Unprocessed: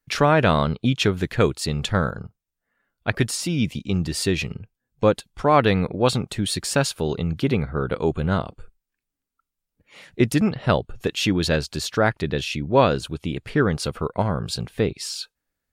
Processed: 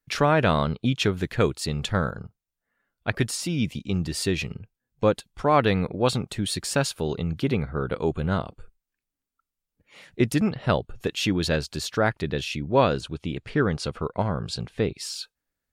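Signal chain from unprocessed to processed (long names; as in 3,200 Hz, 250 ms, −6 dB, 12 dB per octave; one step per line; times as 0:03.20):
0:13.01–0:14.91: low-pass filter 7,700 Hz 12 dB per octave
level −3 dB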